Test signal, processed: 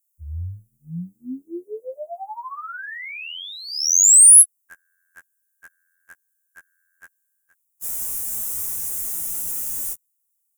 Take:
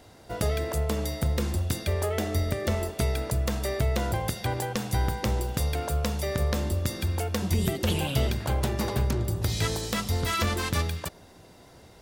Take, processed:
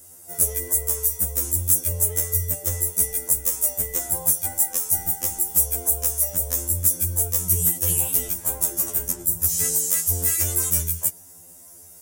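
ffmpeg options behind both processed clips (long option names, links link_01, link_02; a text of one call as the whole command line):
ffmpeg -i in.wav -af "aexciter=amount=12:drive=8.8:freq=6400,afftfilt=real='re*2*eq(mod(b,4),0)':imag='im*2*eq(mod(b,4),0)':win_size=2048:overlap=0.75,volume=-4.5dB" out.wav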